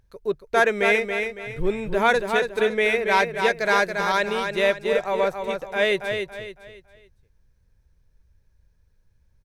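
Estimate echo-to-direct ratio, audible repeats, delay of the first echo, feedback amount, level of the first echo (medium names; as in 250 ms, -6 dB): -5.5 dB, 4, 279 ms, 35%, -6.0 dB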